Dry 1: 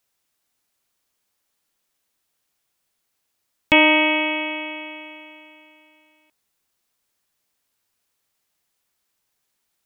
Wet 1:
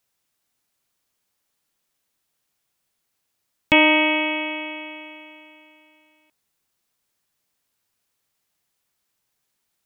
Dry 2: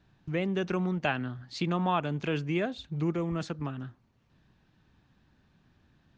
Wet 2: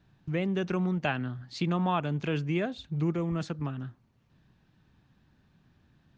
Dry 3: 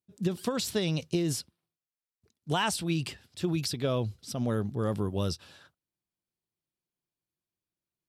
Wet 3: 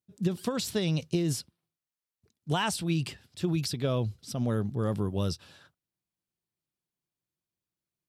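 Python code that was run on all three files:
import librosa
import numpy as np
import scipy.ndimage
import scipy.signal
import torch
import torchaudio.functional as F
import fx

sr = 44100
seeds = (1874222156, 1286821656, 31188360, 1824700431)

y = fx.peak_eq(x, sr, hz=140.0, db=3.5, octaves=1.3)
y = y * librosa.db_to_amplitude(-1.0)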